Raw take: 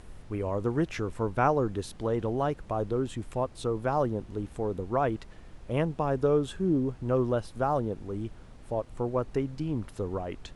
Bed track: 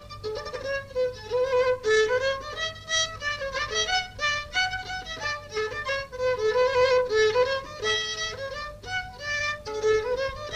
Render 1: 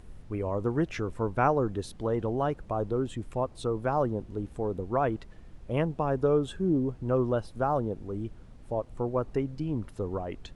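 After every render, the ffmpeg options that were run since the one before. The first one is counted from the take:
-af "afftdn=nr=6:nf=-49"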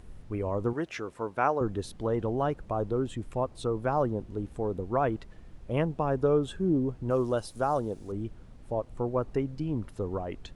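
-filter_complex "[0:a]asettb=1/sr,asplit=3[a][b][c];[a]atrim=end=0.734[d];[b]atrim=start=0.73:end=1.61,asetpts=PTS-STARTPTS,afade=t=in:d=0.004:c=qsin,afade=t=out:st=0.876:d=0.004:c=qsin,highpass=f=460:p=1[e];[c]atrim=start=1.606[f];[d][e]acrossfade=d=0.004:c1=hsin:c2=qsin[g];[g][f]acrossfade=d=0.004:c1=qsin:c2=hsin,asettb=1/sr,asplit=3[h][i][j];[h]atrim=end=7.104[k];[i]atrim=start=7.1:end=8.12,asetpts=PTS-STARTPTS,afade=t=in:d=0.004:c=qsin,afade=t=out:st=1.016:d=0.004:c=qsin,bass=f=250:g=-4,treble=f=4k:g=13[l];[j]atrim=start=8.116[m];[k][l]acrossfade=d=0.004:c1=hsin:c2=qsin[n];[n][m]acrossfade=d=0.004:c1=qsin:c2=hsin"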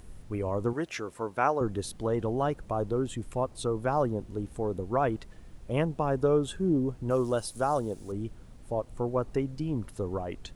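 -af "highshelf=f=6.4k:g=11.5"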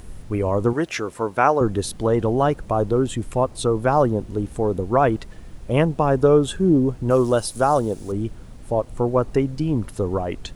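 -af "volume=9.5dB,alimiter=limit=-3dB:level=0:latency=1"

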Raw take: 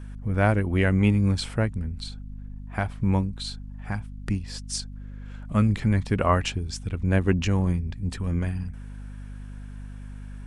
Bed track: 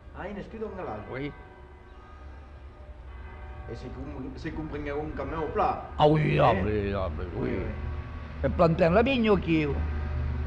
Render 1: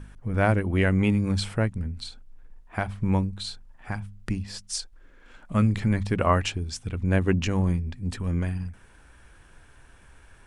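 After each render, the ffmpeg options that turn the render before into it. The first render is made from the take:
-af "bandreject=f=50:t=h:w=4,bandreject=f=100:t=h:w=4,bandreject=f=150:t=h:w=4,bandreject=f=200:t=h:w=4,bandreject=f=250:t=h:w=4"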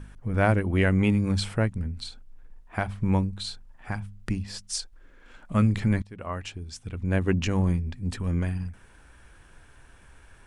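-filter_complex "[0:a]asplit=2[a][b];[a]atrim=end=6.02,asetpts=PTS-STARTPTS,afade=t=out:st=6.016:d=0.004:c=hsin:silence=0.0668344[c];[b]atrim=start=6.02,asetpts=PTS-STARTPTS,afade=t=in:d=1.51:silence=0.0668344[d];[c][d]concat=n=2:v=0:a=1"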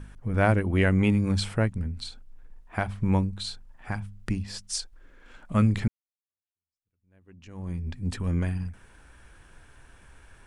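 -filter_complex "[0:a]asplit=2[a][b];[a]atrim=end=5.88,asetpts=PTS-STARTPTS,afade=t=out:st=5.876:d=0.004:c=hsin[c];[b]atrim=start=5.88,asetpts=PTS-STARTPTS,afade=t=in:d=2.01:c=exp[d];[c][d]concat=n=2:v=0:a=1"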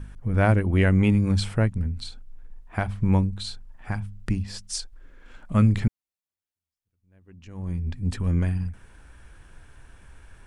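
-af "lowshelf=f=170:g=5.5"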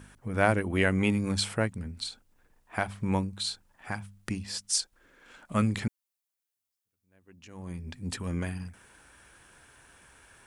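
-af "highpass=f=360:p=1,highshelf=f=6.3k:g=8"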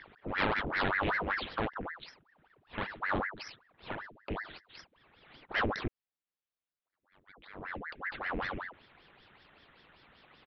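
-af "aresample=8000,aeval=exprs='clip(val(0),-1,0.0398)':c=same,aresample=44100,aeval=exprs='val(0)*sin(2*PI*1000*n/s+1000*0.9/5.2*sin(2*PI*5.2*n/s))':c=same"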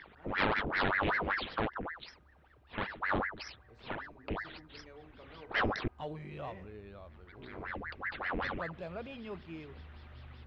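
-filter_complex "[1:a]volume=-21dB[a];[0:a][a]amix=inputs=2:normalize=0"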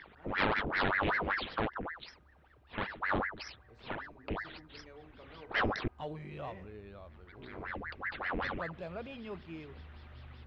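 -af anull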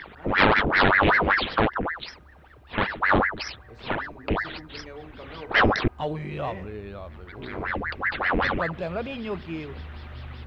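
-af "volume=12dB"

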